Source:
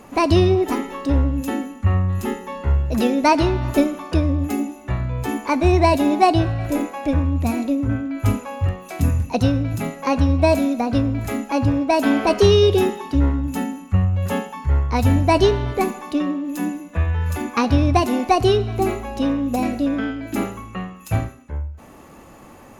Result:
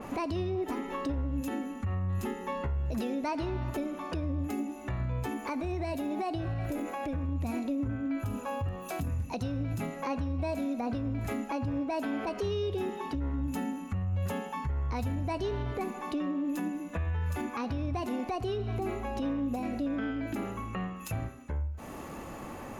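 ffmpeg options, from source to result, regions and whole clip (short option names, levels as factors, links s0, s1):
-filter_complex "[0:a]asettb=1/sr,asplit=3[s0][s1][s2];[s0]atrim=end=5.384[s3];[s1]atrim=start=5.38:end=7.29,asetpts=PTS-STARTPTS,afade=t=in:d=0.004:c=qsin,afade=t=out:st=1.906:d=0.004:c=qsin,highshelf=f=11000:g=9,bandreject=f=1000:w=18,acompressor=threshold=0.0562:ratio=5:attack=3.2:release=140:knee=1:detection=peak[s4];[s2]atrim=start=7.286[s5];[s3][s4]acrossfade=d=0.004:c1=hsin:c2=qsin[s6];[s6][s5]acrossfade=d=0.004:c1=qsin:c2=hsin,asettb=1/sr,asplit=3[s7][s8][s9];[s7]atrim=end=8.214[s10];[s8]atrim=start=8.21:end=9.07,asetpts=PTS-STARTPTS,afade=t=in:d=0.004:c=qsin,afade=t=out:st=0.856:d=0.004:c=qsin,highshelf=f=12000:g=9.5,bandreject=f=2100:w=5.2,acompressor=threshold=0.0794:ratio=2:attack=3.2:release=140:knee=1:detection=peak[s11];[s9]atrim=start=9.066[s12];[s10][s11]acrossfade=d=0.004:c1=hsin:c2=qsin[s13];[s13][s12]acrossfade=d=0.004:c1=qsin:c2=hsin,acompressor=threshold=0.0126:ratio=2,alimiter=level_in=1.5:limit=0.0631:level=0:latency=1:release=97,volume=0.668,adynamicequalizer=threshold=0.00158:dfrequency=3500:dqfactor=0.7:tfrequency=3500:tqfactor=0.7:attack=5:release=100:ratio=0.375:range=3:mode=cutabove:tftype=highshelf,volume=1.33"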